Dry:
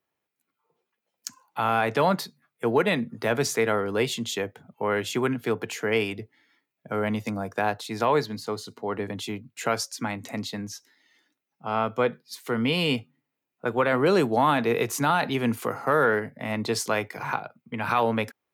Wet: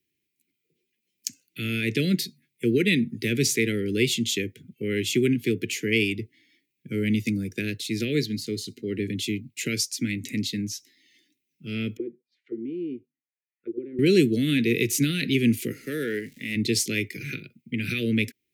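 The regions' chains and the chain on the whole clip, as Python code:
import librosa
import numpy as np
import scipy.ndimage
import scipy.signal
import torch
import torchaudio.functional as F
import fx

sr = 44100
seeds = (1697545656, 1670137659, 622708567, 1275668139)

y = fx.chain(x, sr, fx.lowpass(hz=3300.0, slope=12),
    fx.auto_wah(base_hz=340.0, top_hz=1900.0, q=7.9, full_db=-23.5, direction='down'), at=(11.97, 13.99))
y = fx.highpass(y, sr, hz=390.0, slope=6, at=(15.72, 16.55), fade=0.02)
y = fx.dmg_crackle(y, sr, seeds[0], per_s=470.0, level_db=-47.0, at=(15.72, 16.55), fade=0.02)
y = scipy.signal.sosfilt(scipy.signal.ellip(3, 1.0, 70, [360.0, 2200.0], 'bandstop', fs=sr, output='sos'), y)
y = fx.dynamic_eq(y, sr, hz=770.0, q=1.3, threshold_db=-50.0, ratio=4.0, max_db=4)
y = F.gain(torch.from_numpy(y), 5.5).numpy()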